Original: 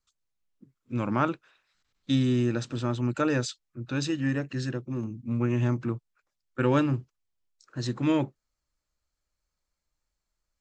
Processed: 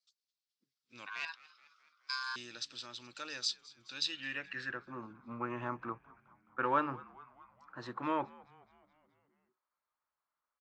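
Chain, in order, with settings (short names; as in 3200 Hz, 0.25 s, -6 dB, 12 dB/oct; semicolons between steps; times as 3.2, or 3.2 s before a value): bell 6800 Hz -6 dB 0.35 oct; in parallel at -2 dB: limiter -18.5 dBFS, peak gain reduction 7.5 dB; on the sum: hard clip -10.5 dBFS, distortion -36 dB; on a send: frequency-shifting echo 0.212 s, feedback 65%, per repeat -85 Hz, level -21 dB; 1.06–2.36 on the sum: ring modulator 1300 Hz; band-pass sweep 4800 Hz -> 1100 Hz, 3.93–4.96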